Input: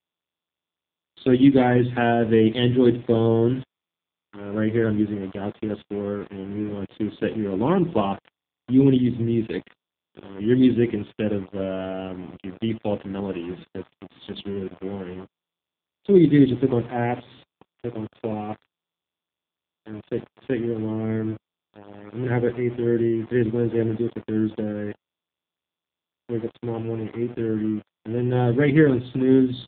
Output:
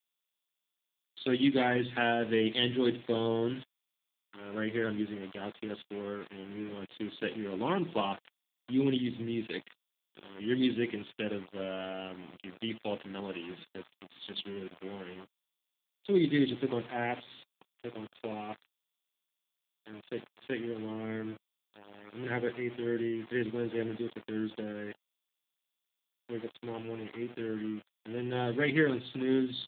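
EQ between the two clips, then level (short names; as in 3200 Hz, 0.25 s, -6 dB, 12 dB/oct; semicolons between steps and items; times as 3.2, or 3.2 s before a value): tilt +4 dB/oct; bell 180 Hz +3.5 dB 1.7 oct; -7.0 dB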